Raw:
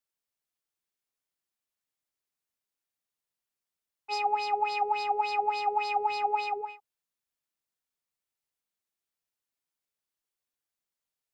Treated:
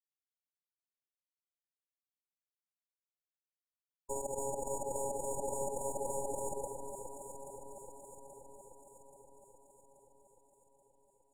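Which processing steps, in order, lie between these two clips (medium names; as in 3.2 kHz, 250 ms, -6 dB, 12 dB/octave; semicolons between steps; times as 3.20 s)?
sorted samples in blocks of 32 samples; high-pass 120 Hz 12 dB/octave; high-order bell 1.2 kHz -12.5 dB 1.2 oct; in parallel at +1 dB: compressor with a negative ratio -35 dBFS, ratio -1; on the sum: peak limiter -17 dBFS, peak gain reduction 5 dB; power-law waveshaper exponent 3; brick-wall FIR band-stop 1–6.8 kHz; distance through air 95 m; echo whose repeats swap between lows and highs 415 ms, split 1 kHz, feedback 74%, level -5 dB; trim +8.5 dB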